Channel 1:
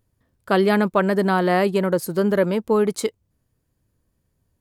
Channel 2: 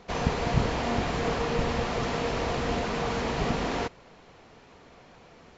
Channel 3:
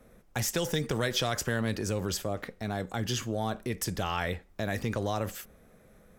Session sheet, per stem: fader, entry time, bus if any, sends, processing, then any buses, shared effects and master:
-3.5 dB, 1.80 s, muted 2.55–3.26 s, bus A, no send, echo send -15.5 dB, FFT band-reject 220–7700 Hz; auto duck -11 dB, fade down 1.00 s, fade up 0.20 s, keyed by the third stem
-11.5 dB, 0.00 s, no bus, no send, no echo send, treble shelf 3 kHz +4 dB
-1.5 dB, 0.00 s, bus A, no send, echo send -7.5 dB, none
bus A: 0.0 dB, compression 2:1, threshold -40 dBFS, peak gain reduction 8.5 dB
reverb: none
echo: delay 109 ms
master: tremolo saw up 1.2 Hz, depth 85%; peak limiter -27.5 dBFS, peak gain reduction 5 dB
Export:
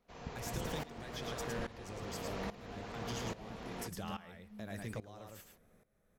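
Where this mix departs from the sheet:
stem 1 -3.5 dB -> -10.5 dB; stem 2: missing treble shelf 3 kHz +4 dB; stem 3 -1.5 dB -> -8.5 dB

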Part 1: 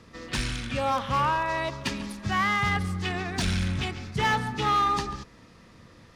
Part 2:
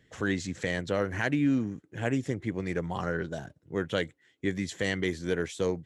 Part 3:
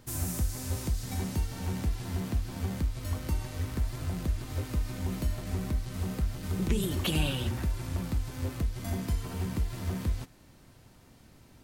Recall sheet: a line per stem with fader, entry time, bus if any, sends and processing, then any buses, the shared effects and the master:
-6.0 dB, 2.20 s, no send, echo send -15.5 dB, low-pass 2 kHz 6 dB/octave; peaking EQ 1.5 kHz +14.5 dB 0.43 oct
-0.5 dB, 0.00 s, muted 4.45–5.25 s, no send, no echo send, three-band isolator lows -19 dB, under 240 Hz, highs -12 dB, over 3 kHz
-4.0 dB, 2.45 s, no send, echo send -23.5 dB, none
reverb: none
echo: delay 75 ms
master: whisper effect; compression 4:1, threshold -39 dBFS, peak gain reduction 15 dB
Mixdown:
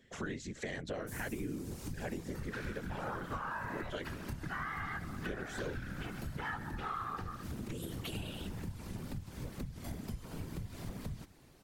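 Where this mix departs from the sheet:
stem 2: missing three-band isolator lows -19 dB, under 240 Hz, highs -12 dB, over 3 kHz; stem 3: entry 2.45 s -> 1.00 s

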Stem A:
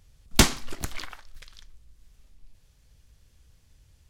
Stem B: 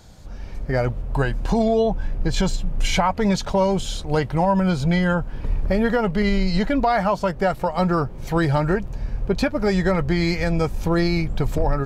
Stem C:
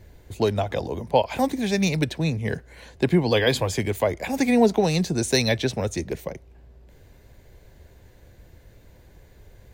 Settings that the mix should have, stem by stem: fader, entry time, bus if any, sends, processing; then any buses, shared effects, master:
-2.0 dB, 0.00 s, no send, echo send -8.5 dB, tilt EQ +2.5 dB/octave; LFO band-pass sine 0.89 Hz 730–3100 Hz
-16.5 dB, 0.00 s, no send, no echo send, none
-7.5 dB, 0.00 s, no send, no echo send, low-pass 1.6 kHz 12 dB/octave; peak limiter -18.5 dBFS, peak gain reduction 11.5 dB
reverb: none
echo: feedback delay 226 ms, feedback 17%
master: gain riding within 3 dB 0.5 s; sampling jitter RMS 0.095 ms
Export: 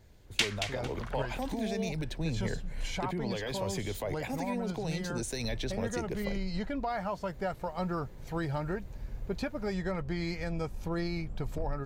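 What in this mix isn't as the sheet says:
stem C: missing low-pass 1.6 kHz 12 dB/octave; master: missing sampling jitter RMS 0.095 ms

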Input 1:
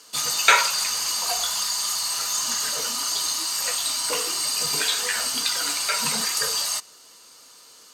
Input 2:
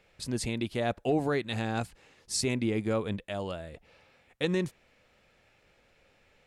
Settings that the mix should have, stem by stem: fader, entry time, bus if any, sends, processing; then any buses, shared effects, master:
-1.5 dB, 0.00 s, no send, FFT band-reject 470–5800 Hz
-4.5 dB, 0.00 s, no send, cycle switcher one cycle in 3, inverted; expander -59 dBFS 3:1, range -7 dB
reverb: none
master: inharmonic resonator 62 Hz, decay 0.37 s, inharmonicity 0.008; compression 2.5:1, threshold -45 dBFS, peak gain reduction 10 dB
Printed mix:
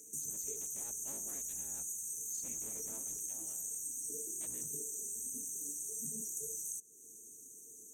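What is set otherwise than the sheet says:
stem 2 -4.5 dB -> -16.5 dB; master: missing inharmonic resonator 62 Hz, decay 0.37 s, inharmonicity 0.008

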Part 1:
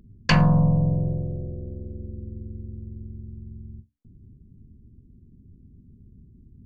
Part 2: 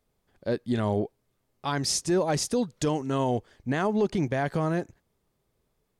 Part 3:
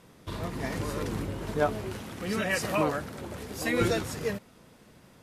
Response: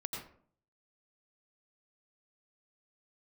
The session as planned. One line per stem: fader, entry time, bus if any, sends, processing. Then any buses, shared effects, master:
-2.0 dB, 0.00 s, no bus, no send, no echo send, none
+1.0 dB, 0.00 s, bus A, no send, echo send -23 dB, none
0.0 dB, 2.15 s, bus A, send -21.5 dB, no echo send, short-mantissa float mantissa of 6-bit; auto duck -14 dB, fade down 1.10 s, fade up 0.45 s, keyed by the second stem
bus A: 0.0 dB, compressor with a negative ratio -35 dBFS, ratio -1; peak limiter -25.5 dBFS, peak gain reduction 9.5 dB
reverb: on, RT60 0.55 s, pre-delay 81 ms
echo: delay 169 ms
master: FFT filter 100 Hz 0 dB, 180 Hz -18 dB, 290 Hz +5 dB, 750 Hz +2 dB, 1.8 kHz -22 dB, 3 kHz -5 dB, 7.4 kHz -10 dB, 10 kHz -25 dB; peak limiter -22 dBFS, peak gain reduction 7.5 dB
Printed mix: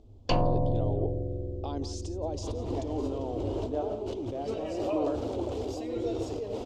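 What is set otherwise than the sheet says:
stem 3 0.0 dB -> +11.5 dB; master: missing peak limiter -22 dBFS, peak gain reduction 7.5 dB

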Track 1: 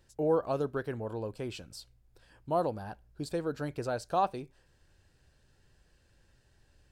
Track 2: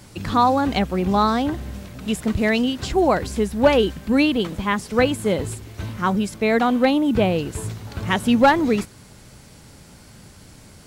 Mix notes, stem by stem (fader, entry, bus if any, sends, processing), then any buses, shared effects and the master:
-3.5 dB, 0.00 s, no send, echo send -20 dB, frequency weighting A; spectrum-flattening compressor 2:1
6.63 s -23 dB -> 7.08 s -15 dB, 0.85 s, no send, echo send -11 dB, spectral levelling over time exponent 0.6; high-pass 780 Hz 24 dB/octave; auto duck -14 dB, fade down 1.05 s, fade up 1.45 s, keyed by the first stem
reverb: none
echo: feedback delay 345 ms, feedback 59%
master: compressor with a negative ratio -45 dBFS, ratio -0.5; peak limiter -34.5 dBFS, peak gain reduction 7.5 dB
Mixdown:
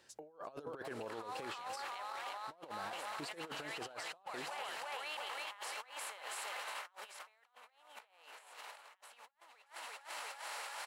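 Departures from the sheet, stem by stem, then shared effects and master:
stem 1: missing spectrum-flattening compressor 2:1; stem 2 -23.0 dB -> -14.0 dB

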